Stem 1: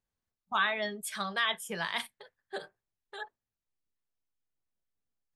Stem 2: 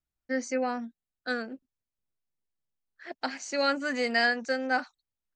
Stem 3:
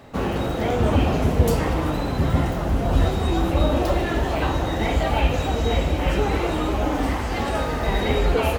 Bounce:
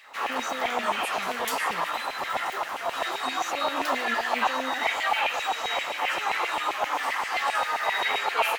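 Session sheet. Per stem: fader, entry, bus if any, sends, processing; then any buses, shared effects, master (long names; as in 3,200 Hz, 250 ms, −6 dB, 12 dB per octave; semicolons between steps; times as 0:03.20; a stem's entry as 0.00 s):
−2.5 dB, 0.00 s, bus A, no send, no processing
+0.5 dB, 0.00 s, bus A, no send, no processing
−0.5 dB, 0.00 s, no bus, no send, notch filter 1,500 Hz, Q 20; auto-filter high-pass saw down 7.6 Hz 770–2,400 Hz
bus A: 0.0 dB, brickwall limiter −28.5 dBFS, peak gain reduction 16 dB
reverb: not used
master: no processing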